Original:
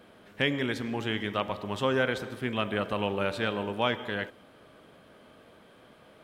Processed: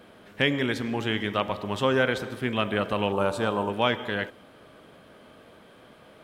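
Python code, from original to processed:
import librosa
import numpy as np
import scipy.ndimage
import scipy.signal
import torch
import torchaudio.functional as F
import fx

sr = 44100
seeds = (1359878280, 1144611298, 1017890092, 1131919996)

y = fx.graphic_eq(x, sr, hz=(1000, 2000, 4000, 8000), db=(8, -10, -4, 6), at=(3.12, 3.7))
y = y * librosa.db_to_amplitude(3.5)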